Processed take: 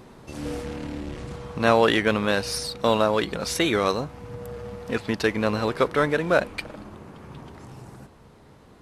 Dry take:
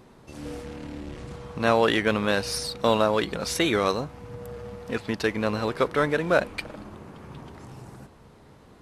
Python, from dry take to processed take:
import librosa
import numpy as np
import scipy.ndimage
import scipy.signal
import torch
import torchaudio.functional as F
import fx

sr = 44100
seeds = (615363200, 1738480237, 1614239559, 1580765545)

y = fx.rider(x, sr, range_db=4, speed_s=2.0)
y = y * 10.0 ** (1.0 / 20.0)